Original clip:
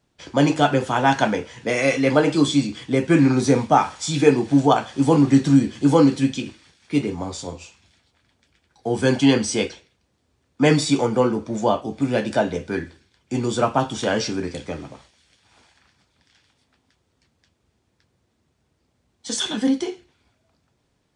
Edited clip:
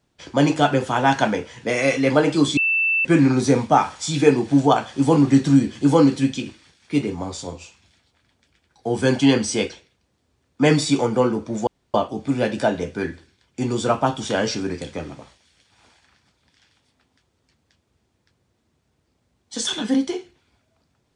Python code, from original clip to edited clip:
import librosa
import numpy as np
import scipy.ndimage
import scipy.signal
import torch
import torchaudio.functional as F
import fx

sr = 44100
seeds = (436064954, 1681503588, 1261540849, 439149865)

y = fx.edit(x, sr, fx.bleep(start_s=2.57, length_s=0.48, hz=2660.0, db=-16.5),
    fx.insert_room_tone(at_s=11.67, length_s=0.27), tone=tone)